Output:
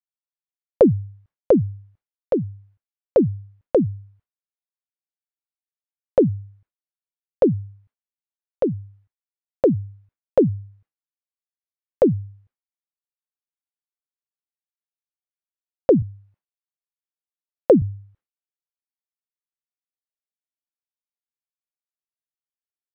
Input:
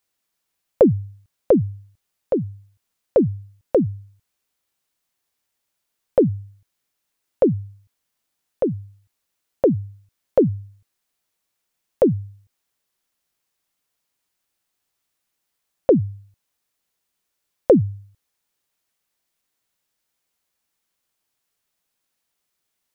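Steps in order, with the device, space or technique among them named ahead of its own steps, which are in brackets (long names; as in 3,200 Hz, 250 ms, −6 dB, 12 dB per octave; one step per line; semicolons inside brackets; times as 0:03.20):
hearing-loss simulation (low-pass filter 1,800 Hz 12 dB per octave; downward expander −52 dBFS)
0:16.02–0:17.82: high-pass filter 120 Hz 12 dB per octave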